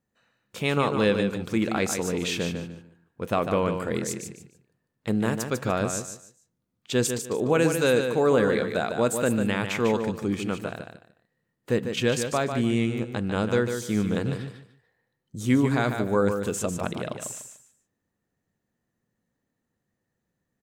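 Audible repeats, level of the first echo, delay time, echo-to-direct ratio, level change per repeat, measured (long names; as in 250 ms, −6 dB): 3, −7.0 dB, 148 ms, −6.5 dB, −12.5 dB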